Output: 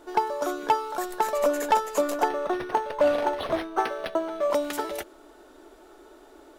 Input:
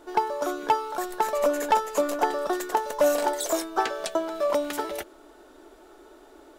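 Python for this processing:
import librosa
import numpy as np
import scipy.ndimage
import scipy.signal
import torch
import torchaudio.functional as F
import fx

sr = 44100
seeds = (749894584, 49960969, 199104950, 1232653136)

y = fx.resample_linear(x, sr, factor=6, at=(2.28, 4.51))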